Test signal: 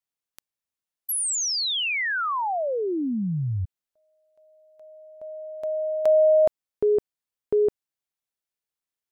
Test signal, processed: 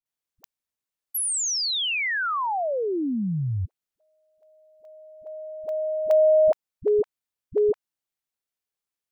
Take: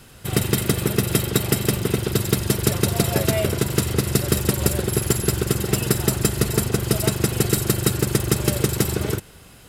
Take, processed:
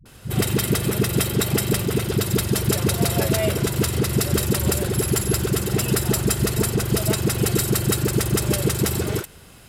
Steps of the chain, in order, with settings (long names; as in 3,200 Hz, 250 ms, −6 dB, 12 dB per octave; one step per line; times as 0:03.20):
all-pass dispersion highs, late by 57 ms, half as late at 330 Hz